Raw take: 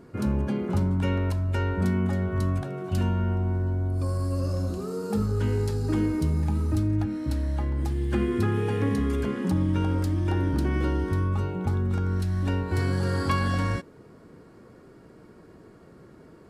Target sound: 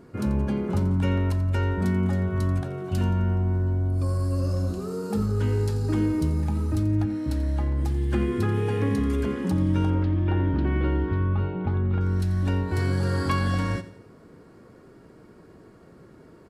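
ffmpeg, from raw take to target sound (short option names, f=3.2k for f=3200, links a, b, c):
-filter_complex "[0:a]asettb=1/sr,asplit=3[a][b][c];[a]atrim=end=9.904[d];[b]atrim=start=9.9:end=12.01,asetpts=PTS-STARTPTS,afade=t=in:d=0.004:c=qsin,afade=t=out:st=2.106:d=0.004:c=qsin,lowpass=f=3.4k:w=0.5412,lowpass=f=3.4k:w=1.3066[e];[c]atrim=start=12.006[f];[d][e]acrossfade=d=0.004:c1=hsin:c2=qsin[g];[g][f]acrossfade=d=0.004:c1=qsin:c2=hsin,aecho=1:1:87|174|261|348:0.178|0.0782|0.0344|0.0151"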